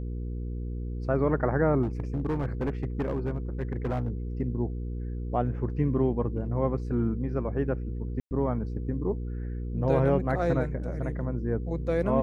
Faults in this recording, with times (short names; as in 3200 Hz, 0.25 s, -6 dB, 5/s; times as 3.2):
hum 60 Hz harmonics 8 -33 dBFS
1.82–4.1 clipped -24 dBFS
8.2–8.31 gap 0.109 s